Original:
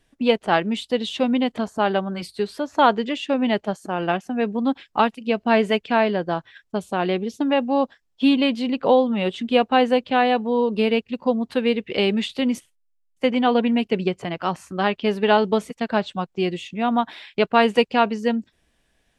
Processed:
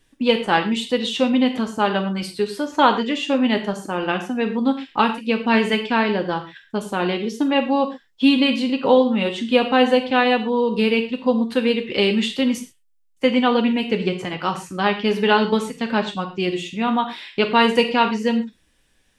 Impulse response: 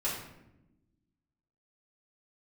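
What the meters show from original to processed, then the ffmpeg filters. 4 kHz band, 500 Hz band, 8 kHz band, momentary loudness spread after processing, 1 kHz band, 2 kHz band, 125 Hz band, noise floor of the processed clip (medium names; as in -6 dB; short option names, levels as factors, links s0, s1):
+4.0 dB, +0.5 dB, no reading, 8 LU, +0.5 dB, +3.5 dB, +1.5 dB, -61 dBFS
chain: -filter_complex "[0:a]equalizer=f=670:t=o:w=0.23:g=-10,asplit=2[s0][s1];[1:a]atrim=start_sample=2205,atrim=end_sample=6174,highshelf=f=2800:g=11.5[s2];[s1][s2]afir=irnorm=-1:irlink=0,volume=0.282[s3];[s0][s3]amix=inputs=2:normalize=0"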